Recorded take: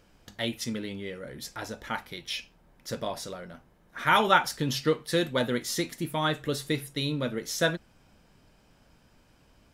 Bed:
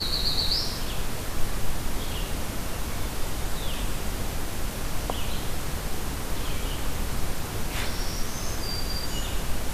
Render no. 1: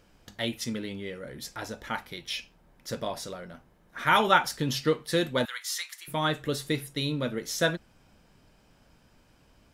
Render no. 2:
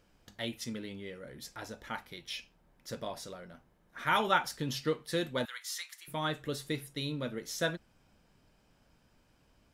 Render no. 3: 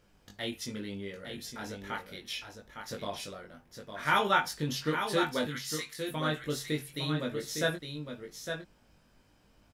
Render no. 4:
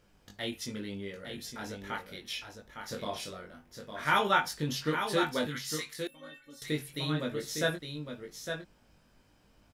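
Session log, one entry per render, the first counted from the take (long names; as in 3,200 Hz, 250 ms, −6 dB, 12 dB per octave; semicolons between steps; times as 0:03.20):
0:05.45–0:06.08: high-pass filter 1,100 Hz 24 dB per octave
level −6.5 dB
double-tracking delay 20 ms −2.5 dB; on a send: single-tap delay 858 ms −7 dB
0:02.78–0:04.04: double-tracking delay 33 ms −7.5 dB; 0:06.07–0:06.62: stiff-string resonator 270 Hz, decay 0.29 s, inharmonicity 0.008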